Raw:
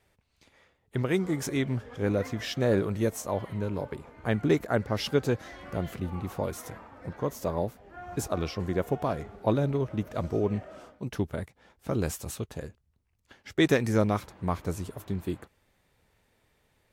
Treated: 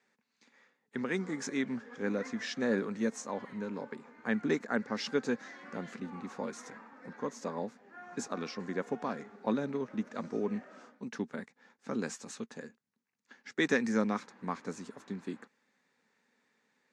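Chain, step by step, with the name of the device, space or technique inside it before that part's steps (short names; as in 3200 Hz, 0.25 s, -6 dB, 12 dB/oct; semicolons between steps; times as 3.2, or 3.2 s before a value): television speaker (speaker cabinet 210–7200 Hz, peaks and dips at 230 Hz +7 dB, 340 Hz -7 dB, 640 Hz -9 dB, 1700 Hz +5 dB, 3100 Hz -6 dB, 6800 Hz +3 dB); gain -3.5 dB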